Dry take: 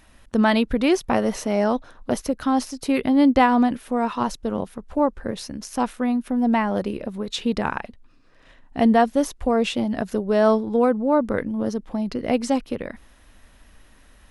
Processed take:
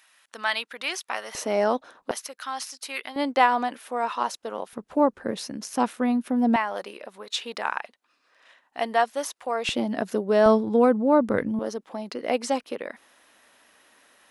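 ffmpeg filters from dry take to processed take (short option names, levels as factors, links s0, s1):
-af "asetnsamples=n=441:p=0,asendcmd='1.35 highpass f 340;2.11 highpass f 1300;3.16 highpass f 590;4.73 highpass f 190;6.56 highpass f 760;9.69 highpass f 240;10.46 highpass f 100;11.59 highpass f 420',highpass=1300"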